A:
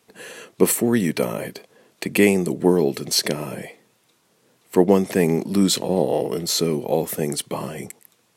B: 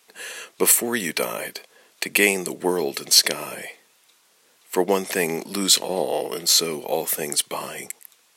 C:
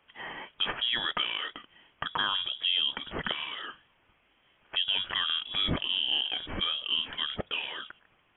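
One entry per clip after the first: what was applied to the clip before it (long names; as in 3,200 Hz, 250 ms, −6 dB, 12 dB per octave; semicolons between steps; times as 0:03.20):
high-pass filter 1,400 Hz 6 dB per octave; level +6 dB
voice inversion scrambler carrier 3,600 Hz; brickwall limiter −14 dBFS, peak gain reduction 10 dB; level −3.5 dB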